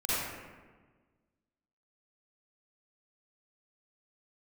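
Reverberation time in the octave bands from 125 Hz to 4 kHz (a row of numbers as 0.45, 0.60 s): 1.7, 1.8, 1.5, 1.3, 1.2, 0.80 s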